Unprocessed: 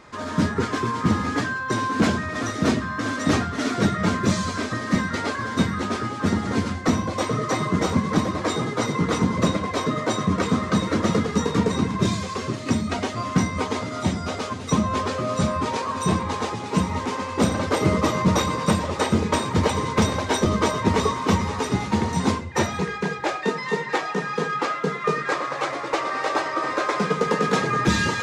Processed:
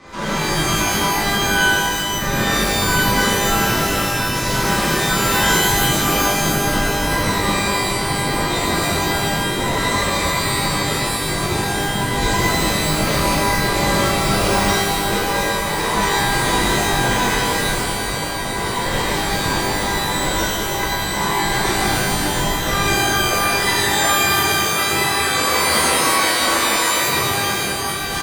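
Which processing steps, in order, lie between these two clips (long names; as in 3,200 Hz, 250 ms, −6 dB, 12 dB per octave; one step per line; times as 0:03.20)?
compressor whose output falls as the input rises −28 dBFS, ratio −0.5
single-tap delay 718 ms −11 dB
frequency shifter −60 Hz
reverb with rising layers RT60 1.5 s, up +12 semitones, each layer −2 dB, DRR −9 dB
level −3.5 dB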